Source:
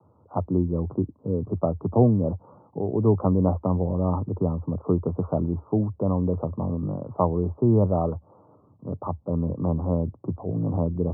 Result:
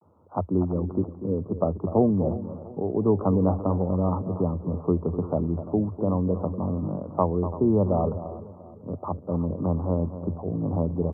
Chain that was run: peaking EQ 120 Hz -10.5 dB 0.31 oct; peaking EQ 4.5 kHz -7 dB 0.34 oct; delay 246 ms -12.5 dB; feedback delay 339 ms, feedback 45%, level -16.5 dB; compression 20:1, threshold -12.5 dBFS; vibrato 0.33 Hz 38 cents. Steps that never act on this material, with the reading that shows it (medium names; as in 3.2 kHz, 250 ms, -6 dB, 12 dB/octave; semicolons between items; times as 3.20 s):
peaking EQ 4.5 kHz: input has nothing above 1.2 kHz